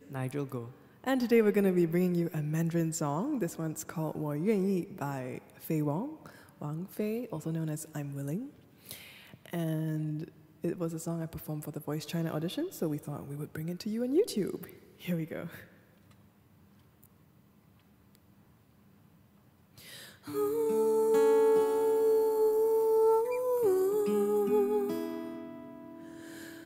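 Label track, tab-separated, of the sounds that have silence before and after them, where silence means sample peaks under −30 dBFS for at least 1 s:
20.350000	25.200000	sound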